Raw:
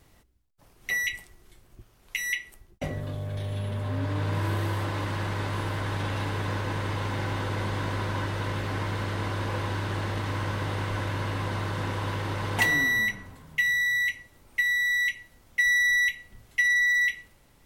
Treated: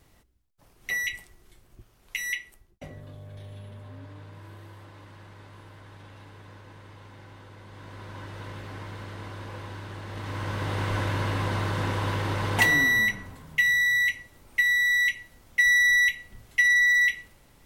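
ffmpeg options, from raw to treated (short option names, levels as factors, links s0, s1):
-af "volume=9.44,afade=t=out:st=2.3:d=0.55:silence=0.334965,afade=t=out:st=3.44:d=0.89:silence=0.421697,afade=t=in:st=7.65:d=0.76:silence=0.354813,afade=t=in:st=10.05:d=0.88:silence=0.266073"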